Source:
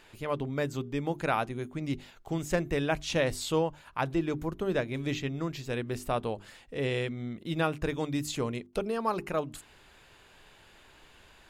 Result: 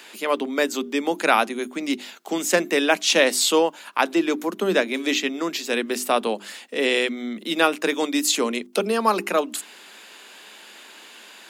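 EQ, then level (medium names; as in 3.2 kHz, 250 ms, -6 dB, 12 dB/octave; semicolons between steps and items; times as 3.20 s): steep high-pass 190 Hz 96 dB/octave; treble shelf 2 kHz +9 dB; +8.5 dB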